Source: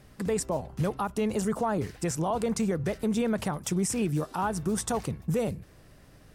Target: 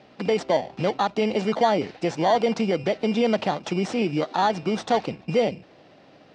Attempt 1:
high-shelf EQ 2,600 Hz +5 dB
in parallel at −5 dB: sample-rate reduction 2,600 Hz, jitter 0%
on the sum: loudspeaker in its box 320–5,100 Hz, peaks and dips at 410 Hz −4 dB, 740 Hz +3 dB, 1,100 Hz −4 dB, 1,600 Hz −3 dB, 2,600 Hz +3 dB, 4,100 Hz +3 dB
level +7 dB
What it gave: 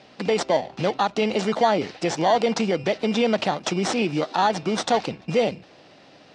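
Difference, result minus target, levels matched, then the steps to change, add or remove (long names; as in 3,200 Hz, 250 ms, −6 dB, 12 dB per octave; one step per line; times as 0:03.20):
4,000 Hz band +2.5 dB
change: high-shelf EQ 2,600 Hz −6.5 dB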